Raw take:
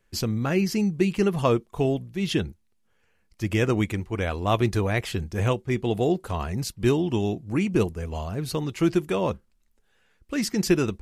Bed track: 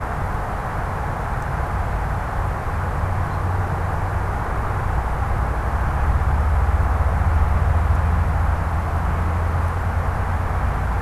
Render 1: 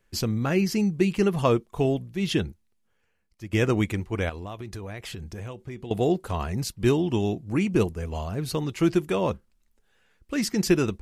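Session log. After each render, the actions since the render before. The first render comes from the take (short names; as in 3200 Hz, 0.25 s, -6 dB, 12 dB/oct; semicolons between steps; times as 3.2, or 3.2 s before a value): 2.46–3.53 fade out, to -13 dB; 4.29–5.91 compressor 8:1, threshold -33 dBFS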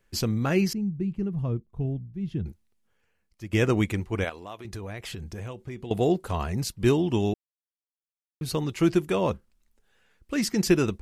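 0.73–2.46 EQ curve 140 Hz 0 dB, 510 Hz -16 dB, 7500 Hz -28 dB; 4.24–4.65 HPF 420 Hz 6 dB/oct; 7.34–8.41 mute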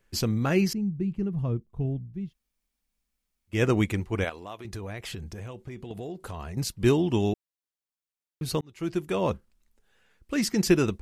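2.26–3.55 room tone, crossfade 0.16 s; 5.18–6.57 compressor, threshold -34 dBFS; 8.61–9.32 fade in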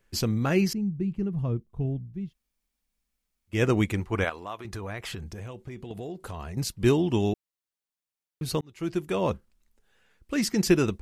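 3.97–5.24 bell 1200 Hz +6 dB 1.3 oct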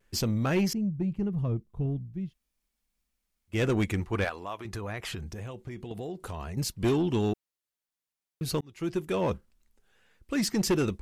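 soft clip -19.5 dBFS, distortion -13 dB; vibrato 1.7 Hz 53 cents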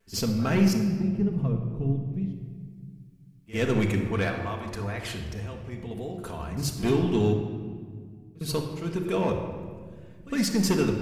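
pre-echo 57 ms -17.5 dB; shoebox room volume 2500 m³, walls mixed, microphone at 1.6 m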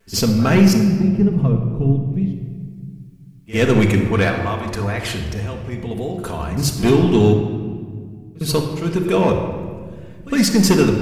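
gain +10 dB; limiter -3 dBFS, peak gain reduction 1.5 dB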